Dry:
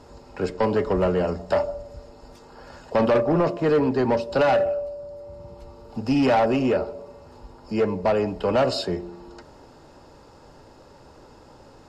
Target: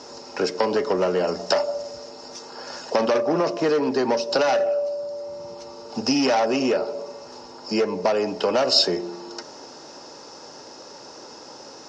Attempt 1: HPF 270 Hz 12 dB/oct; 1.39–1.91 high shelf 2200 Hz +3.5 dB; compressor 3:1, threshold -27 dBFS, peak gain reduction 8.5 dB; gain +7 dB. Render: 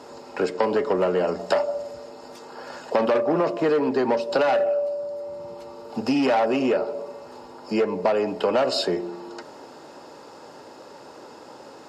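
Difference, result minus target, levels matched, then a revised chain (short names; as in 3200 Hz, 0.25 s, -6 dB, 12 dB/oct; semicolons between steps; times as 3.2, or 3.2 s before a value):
8000 Hz band -8.5 dB
HPF 270 Hz 12 dB/oct; 1.39–1.91 high shelf 2200 Hz +3.5 dB; compressor 3:1, threshold -27 dBFS, peak gain reduction 8.5 dB; synth low-pass 5800 Hz, resonance Q 7.7; gain +7 dB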